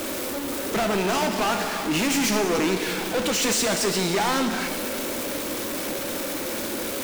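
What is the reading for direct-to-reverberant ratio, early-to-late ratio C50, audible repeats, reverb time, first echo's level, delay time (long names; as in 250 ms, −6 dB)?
5.0 dB, 6.5 dB, no echo audible, 2.2 s, no echo audible, no echo audible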